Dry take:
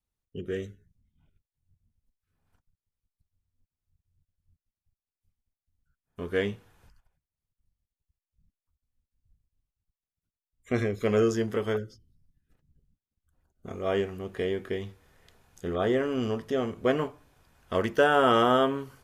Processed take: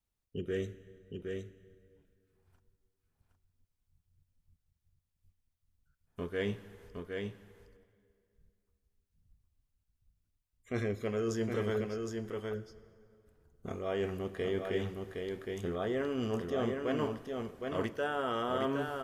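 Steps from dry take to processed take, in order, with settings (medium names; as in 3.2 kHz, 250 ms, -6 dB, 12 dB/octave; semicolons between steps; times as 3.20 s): reverse; compression 12:1, threshold -30 dBFS, peak gain reduction 14.5 dB; reverse; delay 764 ms -4.5 dB; plate-style reverb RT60 2.5 s, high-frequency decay 0.75×, DRR 15.5 dB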